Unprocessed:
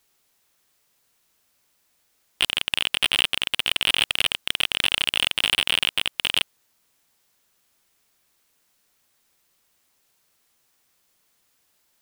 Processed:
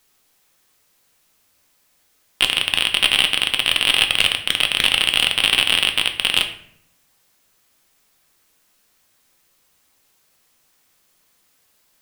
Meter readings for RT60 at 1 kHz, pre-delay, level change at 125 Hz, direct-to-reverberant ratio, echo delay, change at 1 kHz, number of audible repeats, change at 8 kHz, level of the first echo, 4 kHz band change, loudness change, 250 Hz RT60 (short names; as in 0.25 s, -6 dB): 0.60 s, 4 ms, +6.0 dB, 5.0 dB, none, +5.5 dB, none, +5.0 dB, none, +5.5 dB, +5.5 dB, 0.90 s